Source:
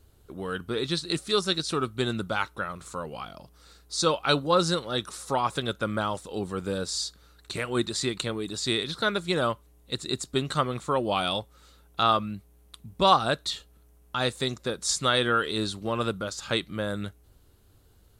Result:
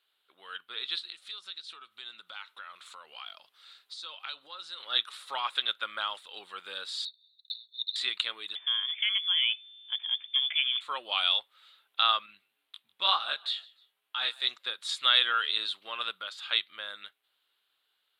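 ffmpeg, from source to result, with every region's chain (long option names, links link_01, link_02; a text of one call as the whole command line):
ffmpeg -i in.wav -filter_complex "[0:a]asettb=1/sr,asplit=3[link_01][link_02][link_03];[link_01]atrim=end=1.054[link_04];[link_02]atrim=start=1.05:end=4.8,asetpts=PTS-STARTPTS,afade=type=in:duration=0.004:curve=qsin,afade=type=out:start_time=3.746:duration=0.004:curve=qsin,equalizer=frequency=6200:width=1.3:gain=5.5,acompressor=threshold=-35dB:ratio=8:attack=3.2:release=140:knee=1:detection=peak[link_05];[link_03]atrim=start=4.796[link_06];[link_04][link_05]acrossfade=duration=0.004:curve1=hsin:curve2=qsin[link_07];[link_07][link_06]acrossfade=duration=0.004:curve1=qsin:curve2=hsin,asettb=1/sr,asplit=3[link_08][link_09][link_10];[link_08]atrim=end=7.054[link_11];[link_09]atrim=start=7.05:end=7.96,asetpts=PTS-STARTPTS,afade=type=in:duration=0.004:curve=qsin,afade=type=out:start_time=0.906:duration=0.004:curve=qsin,asuperpass=centerf=4000:order=20:qfactor=4.2,acrusher=bits=6:mode=log:mix=0:aa=0.000001[link_12];[link_10]atrim=start=7.956[link_13];[link_11][link_12]acrossfade=duration=0.004:curve1=hsin:curve2=qsin[link_14];[link_14][link_13]acrossfade=duration=0.004:curve1=qsin:curve2=hsin,asettb=1/sr,asplit=3[link_15][link_16][link_17];[link_15]atrim=end=8.554[link_18];[link_16]atrim=start=8.55:end=10.81,asetpts=PTS-STARTPTS,afade=type=in:duration=0.004:curve=qsin,afade=type=out:start_time=2.256:duration=0.004:curve=qsin,acompressor=threshold=-32dB:ratio=2:attack=3.2:release=140:knee=1:detection=peak,lowpass=frequency=3100:width_type=q:width=0.5098,lowpass=frequency=3100:width_type=q:width=0.6013,lowpass=frequency=3100:width_type=q:width=0.9,lowpass=frequency=3100:width_type=q:width=2.563,afreqshift=-3600[link_19];[link_17]atrim=start=10.806[link_20];[link_18][link_19]acrossfade=duration=0.004:curve1=hsin:curve2=qsin[link_21];[link_21][link_20]acrossfade=duration=0.004:curve1=qsin:curve2=hsin,asettb=1/sr,asplit=3[link_22][link_23][link_24];[link_22]atrim=end=12.264[link_25];[link_23]atrim=start=12.26:end=14.44,asetpts=PTS-STARTPTS,afade=type=in:duration=0.004:curve=qsin,afade=type=out:start_time=2.176:duration=0.004:curve=qsin,asplit=3[link_26][link_27][link_28];[link_27]adelay=151,afreqshift=38,volume=-23dB[link_29];[link_28]adelay=302,afreqshift=76,volume=-32.1dB[link_30];[link_26][link_29][link_30]amix=inputs=3:normalize=0,atrim=end_sample=96138,flanger=delay=19.5:depth=2.7:speed=2.1[link_31];[link_24]atrim=start=14.436[link_32];[link_25][link_31]acrossfade=duration=0.004:curve1=hsin:curve2=qsin[link_33];[link_33][link_32]acrossfade=duration=0.004:curve1=qsin:curve2=hsin,highpass=1400,highshelf=frequency=4600:width_type=q:width=3:gain=-10,dynaudnorm=framelen=360:gausssize=11:maxgain=5dB,volume=-5dB" out.wav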